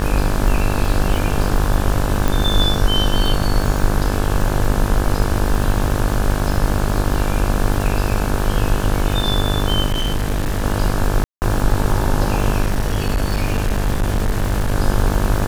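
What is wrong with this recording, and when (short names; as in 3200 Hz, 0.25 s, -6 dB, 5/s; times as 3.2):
buzz 50 Hz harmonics 35 -21 dBFS
crackle 280/s -24 dBFS
2.28 pop
9.86–10.64 clipped -15 dBFS
11.24–11.42 gap 0.179 s
12.62–14.75 clipped -13.5 dBFS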